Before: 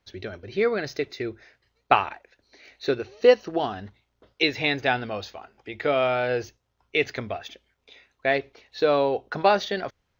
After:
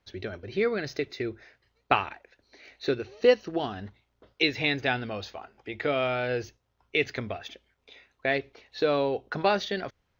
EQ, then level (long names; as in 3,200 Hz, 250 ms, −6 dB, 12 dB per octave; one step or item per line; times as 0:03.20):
high-shelf EQ 5,800 Hz −5.5 dB
dynamic equaliser 800 Hz, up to −6 dB, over −34 dBFS, Q 0.7
0.0 dB